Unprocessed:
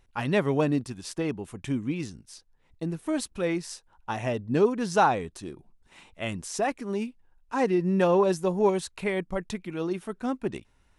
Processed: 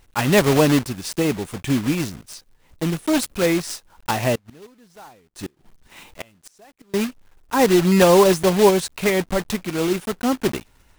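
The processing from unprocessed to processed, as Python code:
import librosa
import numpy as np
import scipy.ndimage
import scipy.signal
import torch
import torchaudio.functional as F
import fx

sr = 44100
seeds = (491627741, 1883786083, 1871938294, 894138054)

y = fx.block_float(x, sr, bits=3)
y = fx.gate_flip(y, sr, shuts_db=-28.0, range_db=-31, at=(4.35, 6.94))
y = y * librosa.db_to_amplitude(8.5)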